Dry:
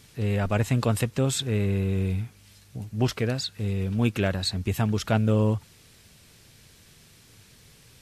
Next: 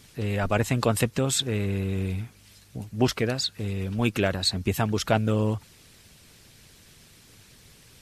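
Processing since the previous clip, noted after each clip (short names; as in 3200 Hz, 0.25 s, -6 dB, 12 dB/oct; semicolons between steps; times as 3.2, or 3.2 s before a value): harmonic-percussive split harmonic -7 dB; gain +4 dB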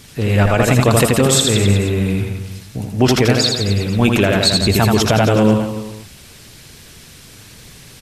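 on a send: reverse bouncing-ball echo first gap 80 ms, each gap 1.1×, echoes 5; on the sum: maximiser +11.5 dB; gain -1 dB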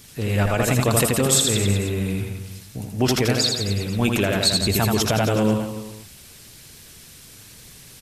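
high shelf 6800 Hz +9 dB; gain -7 dB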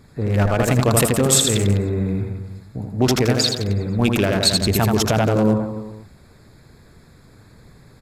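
Wiener smoothing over 15 samples; gain +3 dB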